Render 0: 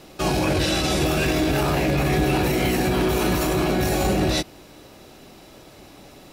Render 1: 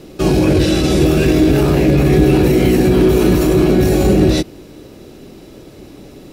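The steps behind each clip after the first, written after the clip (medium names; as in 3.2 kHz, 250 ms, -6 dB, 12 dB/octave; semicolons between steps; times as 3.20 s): resonant low shelf 560 Hz +7.5 dB, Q 1.5; trim +2 dB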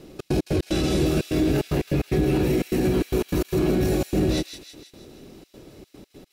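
peak limiter -5.5 dBFS, peak gain reduction 4 dB; trance gate "xx.x.x.xxxxx.x" 149 bpm -60 dB; feedback echo behind a high-pass 161 ms, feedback 54%, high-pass 2.6 kHz, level -6 dB; trim -8 dB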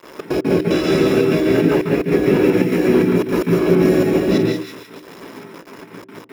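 bit crusher 7-bit; volume shaper 96 bpm, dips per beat 1, -14 dB, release 92 ms; reverberation RT60 0.35 s, pre-delay 142 ms, DRR 0.5 dB; trim -1 dB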